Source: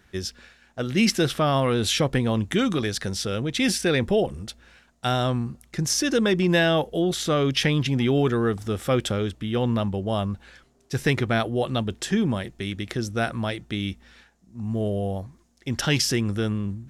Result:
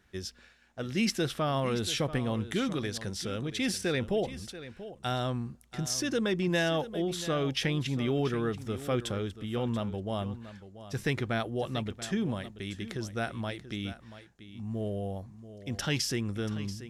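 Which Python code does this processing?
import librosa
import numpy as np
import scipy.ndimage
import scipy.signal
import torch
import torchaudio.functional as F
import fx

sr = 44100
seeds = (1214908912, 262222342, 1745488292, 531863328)

y = x + 10.0 ** (-14.0 / 20.0) * np.pad(x, (int(684 * sr / 1000.0), 0))[:len(x)]
y = F.gain(torch.from_numpy(y), -8.0).numpy()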